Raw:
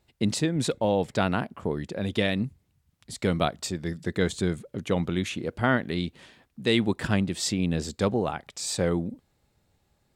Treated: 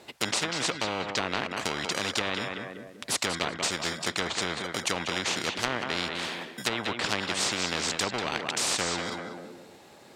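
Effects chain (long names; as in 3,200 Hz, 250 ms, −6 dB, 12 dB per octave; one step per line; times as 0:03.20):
high-shelf EQ 10,000 Hz −9.5 dB
in parallel at −7.5 dB: decimation without filtering 25×
on the sum: high-pass filter 320 Hz 12 dB per octave
treble cut that deepens with the level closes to 1,100 Hz, closed at −20.5 dBFS
tape delay 191 ms, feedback 26%, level −13 dB, low-pass 5,600 Hz
every bin compressed towards the loudest bin 4 to 1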